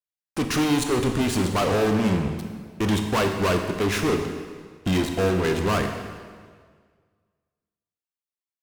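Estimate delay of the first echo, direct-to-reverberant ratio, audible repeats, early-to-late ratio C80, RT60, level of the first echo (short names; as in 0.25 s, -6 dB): none, 4.5 dB, none, 7.5 dB, 1.8 s, none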